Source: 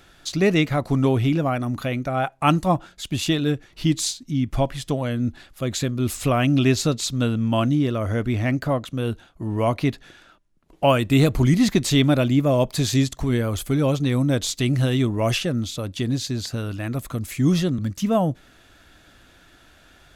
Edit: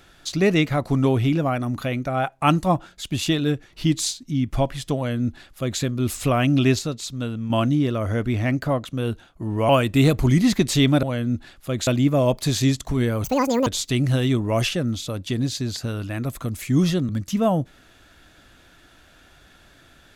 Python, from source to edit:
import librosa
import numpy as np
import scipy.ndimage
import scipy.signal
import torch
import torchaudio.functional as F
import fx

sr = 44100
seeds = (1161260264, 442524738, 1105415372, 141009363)

y = fx.edit(x, sr, fx.duplicate(start_s=4.96, length_s=0.84, to_s=12.19),
    fx.clip_gain(start_s=6.79, length_s=0.71, db=-6.0),
    fx.cut(start_s=9.69, length_s=1.16),
    fx.speed_span(start_s=13.56, length_s=0.8, speed=1.88), tone=tone)